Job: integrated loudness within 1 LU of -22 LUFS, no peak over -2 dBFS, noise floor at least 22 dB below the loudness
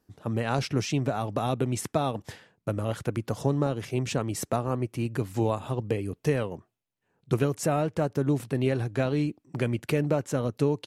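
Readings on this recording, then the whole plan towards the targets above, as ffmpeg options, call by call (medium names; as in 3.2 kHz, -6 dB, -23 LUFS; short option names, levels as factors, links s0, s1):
loudness -29.0 LUFS; peak level -11.0 dBFS; loudness target -22.0 LUFS
-> -af "volume=2.24"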